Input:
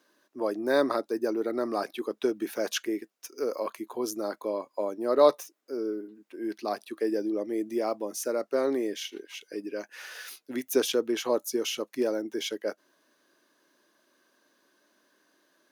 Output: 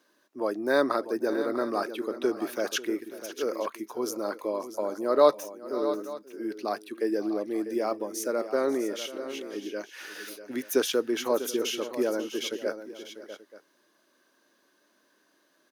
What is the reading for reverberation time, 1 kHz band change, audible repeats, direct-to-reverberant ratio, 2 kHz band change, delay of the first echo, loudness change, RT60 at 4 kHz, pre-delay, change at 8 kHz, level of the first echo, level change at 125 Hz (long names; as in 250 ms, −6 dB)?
no reverb audible, +2.0 dB, 3, no reverb audible, +2.5 dB, 542 ms, +0.5 dB, no reverb audible, no reverb audible, +0.5 dB, −17.0 dB, can't be measured